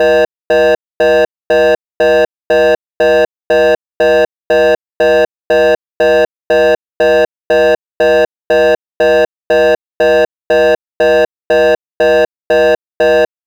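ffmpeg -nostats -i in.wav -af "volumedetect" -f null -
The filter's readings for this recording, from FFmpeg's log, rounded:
mean_volume: -11.4 dB
max_volume: -6.8 dB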